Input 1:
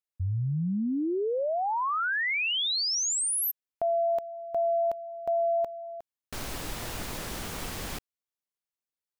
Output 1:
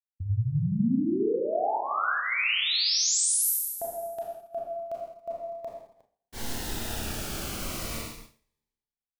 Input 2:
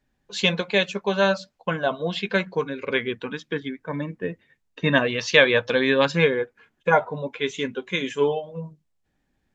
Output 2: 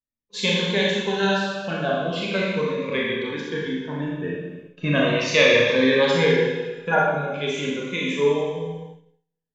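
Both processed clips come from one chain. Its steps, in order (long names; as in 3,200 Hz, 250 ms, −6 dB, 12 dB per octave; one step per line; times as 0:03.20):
four-comb reverb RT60 1.3 s, combs from 27 ms, DRR −4.5 dB
downward expander −34 dBFS, range −25 dB
phaser whose notches keep moving one way falling 0.37 Hz
level −2.5 dB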